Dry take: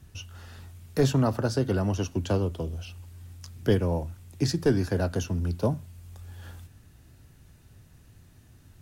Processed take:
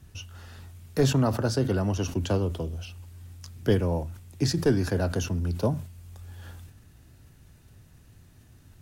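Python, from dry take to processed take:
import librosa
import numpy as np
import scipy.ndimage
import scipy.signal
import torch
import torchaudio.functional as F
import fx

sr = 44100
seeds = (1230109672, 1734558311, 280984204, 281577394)

y = fx.sustainer(x, sr, db_per_s=110.0)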